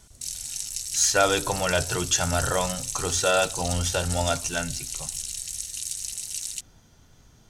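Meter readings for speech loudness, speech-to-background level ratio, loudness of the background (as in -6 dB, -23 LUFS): -25.0 LUFS, 5.5 dB, -30.5 LUFS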